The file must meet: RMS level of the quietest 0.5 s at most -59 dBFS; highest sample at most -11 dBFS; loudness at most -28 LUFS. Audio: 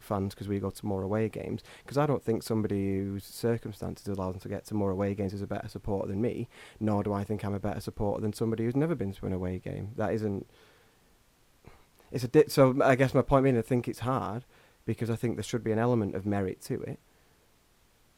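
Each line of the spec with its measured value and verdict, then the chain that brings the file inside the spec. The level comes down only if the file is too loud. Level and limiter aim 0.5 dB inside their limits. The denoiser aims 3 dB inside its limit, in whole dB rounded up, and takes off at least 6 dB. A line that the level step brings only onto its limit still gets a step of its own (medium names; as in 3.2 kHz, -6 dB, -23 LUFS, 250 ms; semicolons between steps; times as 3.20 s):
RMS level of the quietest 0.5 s -65 dBFS: pass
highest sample -9.0 dBFS: fail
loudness -30.5 LUFS: pass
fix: peak limiter -11.5 dBFS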